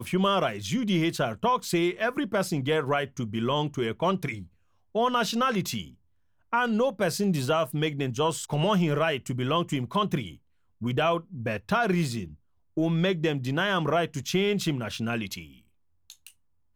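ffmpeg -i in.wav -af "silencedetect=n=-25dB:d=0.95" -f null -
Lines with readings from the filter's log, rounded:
silence_start: 15.39
silence_end: 16.76 | silence_duration: 1.37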